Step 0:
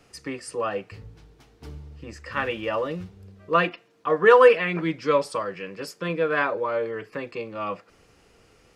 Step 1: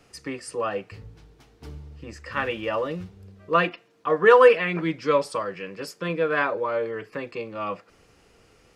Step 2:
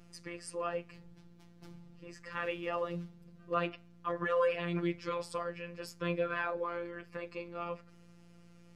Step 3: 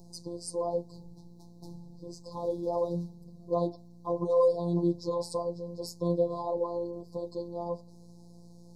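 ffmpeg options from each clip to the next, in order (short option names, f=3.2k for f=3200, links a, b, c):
-af anull
-af "alimiter=limit=-15dB:level=0:latency=1:release=53,aeval=exprs='val(0)+0.00562*(sin(2*PI*60*n/s)+sin(2*PI*2*60*n/s)/2+sin(2*PI*3*60*n/s)/3+sin(2*PI*4*60*n/s)/4+sin(2*PI*5*60*n/s)/5)':c=same,afftfilt=real='hypot(re,im)*cos(PI*b)':imag='0':win_size=1024:overlap=0.75,volume=-5.5dB"
-af "asuperstop=centerf=2000:order=20:qfactor=0.69,volume=6.5dB"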